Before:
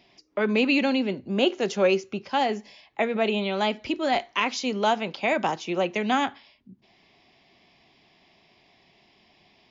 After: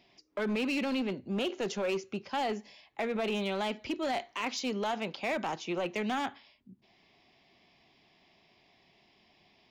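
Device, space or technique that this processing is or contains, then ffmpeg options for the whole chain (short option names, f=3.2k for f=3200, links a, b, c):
limiter into clipper: -af "alimiter=limit=-18dB:level=0:latency=1:release=16,asoftclip=type=hard:threshold=-22.5dB,volume=-5dB"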